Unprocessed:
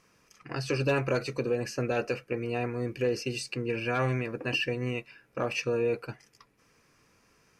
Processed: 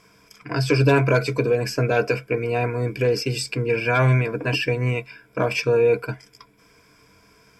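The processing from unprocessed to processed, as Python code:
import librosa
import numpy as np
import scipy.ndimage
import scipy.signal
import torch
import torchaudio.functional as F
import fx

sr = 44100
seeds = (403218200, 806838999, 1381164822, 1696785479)

y = fx.ripple_eq(x, sr, per_octave=1.7, db=11)
y = y * 10.0 ** (8.0 / 20.0)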